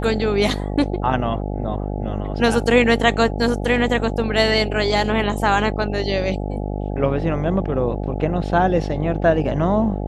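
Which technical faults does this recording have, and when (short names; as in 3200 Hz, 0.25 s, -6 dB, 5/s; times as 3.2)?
buzz 50 Hz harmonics 17 -25 dBFS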